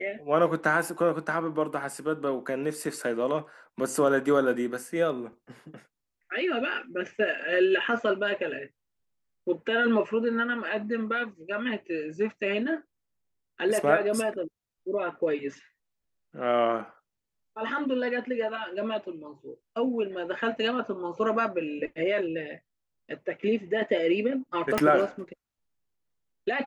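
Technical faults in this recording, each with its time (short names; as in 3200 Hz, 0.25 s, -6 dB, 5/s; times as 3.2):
24.78 pop -9 dBFS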